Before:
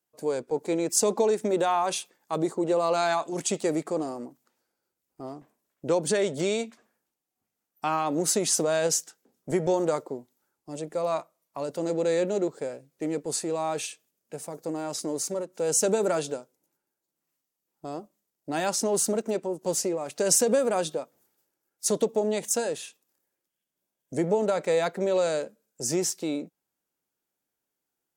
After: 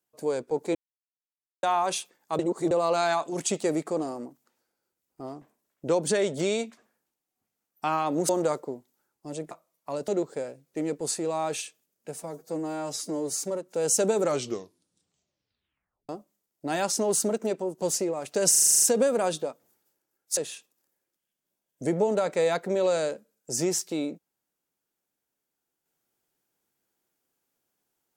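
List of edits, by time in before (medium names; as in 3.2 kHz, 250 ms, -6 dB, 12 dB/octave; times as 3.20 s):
0.75–1.63 s: mute
2.39–2.71 s: reverse
8.29–9.72 s: delete
10.94–11.19 s: delete
11.76–12.33 s: delete
14.46–15.28 s: stretch 1.5×
15.99 s: tape stop 1.94 s
20.34 s: stutter 0.04 s, 9 plays
21.89–22.68 s: delete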